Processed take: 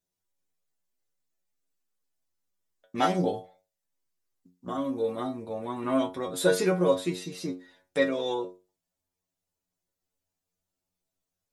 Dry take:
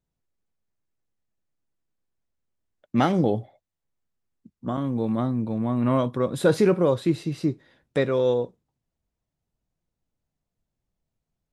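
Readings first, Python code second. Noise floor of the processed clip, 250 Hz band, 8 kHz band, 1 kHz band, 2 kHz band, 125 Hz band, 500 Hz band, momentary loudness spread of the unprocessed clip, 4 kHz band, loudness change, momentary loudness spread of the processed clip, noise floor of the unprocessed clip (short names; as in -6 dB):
under -85 dBFS, -6.5 dB, +4.5 dB, -1.5 dB, +0.5 dB, -10.5 dB, -4.0 dB, 10 LU, +1.5 dB, -4.5 dB, 13 LU, -85 dBFS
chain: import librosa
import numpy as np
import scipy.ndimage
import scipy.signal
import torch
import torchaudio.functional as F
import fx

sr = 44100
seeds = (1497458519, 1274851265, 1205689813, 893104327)

y = fx.bass_treble(x, sr, bass_db=-9, treble_db=7)
y = fx.stiff_resonator(y, sr, f0_hz=89.0, decay_s=0.32, stiffness=0.002)
y = y * 10.0 ** (7.5 / 20.0)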